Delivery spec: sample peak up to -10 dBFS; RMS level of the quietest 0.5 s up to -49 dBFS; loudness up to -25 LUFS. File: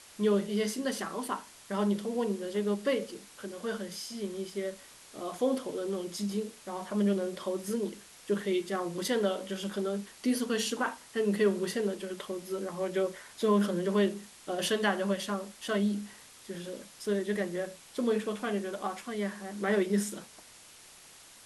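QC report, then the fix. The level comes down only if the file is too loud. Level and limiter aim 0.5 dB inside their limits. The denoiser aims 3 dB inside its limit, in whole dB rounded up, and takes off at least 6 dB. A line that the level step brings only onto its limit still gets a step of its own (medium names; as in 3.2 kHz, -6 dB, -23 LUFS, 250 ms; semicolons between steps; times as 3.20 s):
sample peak -14.5 dBFS: pass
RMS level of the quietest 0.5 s -54 dBFS: pass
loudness -32.5 LUFS: pass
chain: none needed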